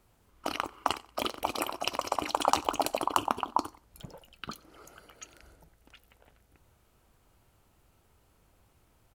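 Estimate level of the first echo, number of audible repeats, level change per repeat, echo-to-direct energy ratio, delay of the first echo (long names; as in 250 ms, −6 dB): −23.0 dB, 2, −9.0 dB, −22.5 dB, 92 ms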